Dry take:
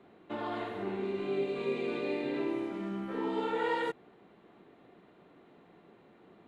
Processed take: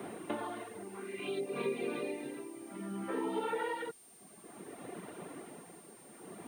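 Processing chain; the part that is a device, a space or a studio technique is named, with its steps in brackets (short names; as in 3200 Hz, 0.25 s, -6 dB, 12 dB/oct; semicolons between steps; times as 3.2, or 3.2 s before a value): 0.94–1.39 bell 1100 Hz -> 4100 Hz +12 dB 0.97 oct; reverb removal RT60 0.86 s; medium wave at night (BPF 110–4000 Hz; compressor 6:1, threshold -49 dBFS, peak gain reduction 18.5 dB; tremolo 0.59 Hz, depth 73%; whine 9000 Hz -73 dBFS; white noise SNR 25 dB); gain +15.5 dB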